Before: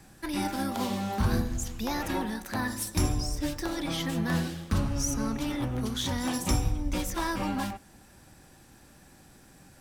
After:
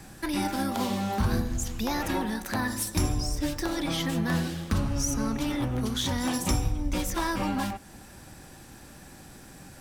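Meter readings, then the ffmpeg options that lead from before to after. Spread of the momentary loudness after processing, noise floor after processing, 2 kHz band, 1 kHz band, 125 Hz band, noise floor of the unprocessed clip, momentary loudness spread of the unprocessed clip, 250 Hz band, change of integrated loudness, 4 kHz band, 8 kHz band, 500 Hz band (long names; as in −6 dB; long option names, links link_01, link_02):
20 LU, −49 dBFS, +2.0 dB, +2.0 dB, +1.0 dB, −55 dBFS, 4 LU, +2.0 dB, +1.5 dB, +2.0 dB, +2.0 dB, +2.0 dB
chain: -af "acompressor=threshold=-41dB:ratio=1.5,volume=7dB"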